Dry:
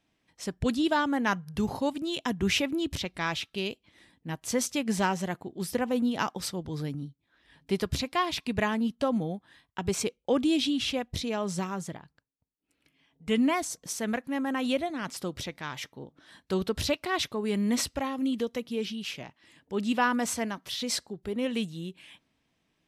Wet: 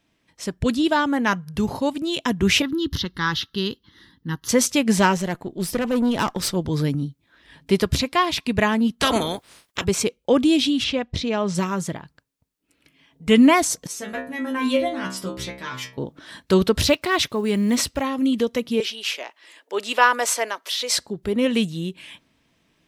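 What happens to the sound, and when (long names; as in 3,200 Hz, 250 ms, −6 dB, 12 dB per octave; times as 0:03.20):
0:02.62–0:04.49: phaser with its sweep stopped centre 2,400 Hz, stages 6
0:05.17–0:06.56: tube saturation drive 27 dB, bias 0.45
0:09.00–0:09.83: ceiling on every frequency bin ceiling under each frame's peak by 30 dB
0:10.84–0:11.55: low-pass filter 5,100 Hz
0:13.87–0:15.98: stiff-string resonator 63 Hz, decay 0.57 s, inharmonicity 0.002
0:16.81–0:18.02: one scale factor per block 7 bits
0:18.80–0:20.98: high-pass filter 430 Hz 24 dB per octave
whole clip: notch filter 770 Hz, Q 12; speech leveller 2 s; level +7.5 dB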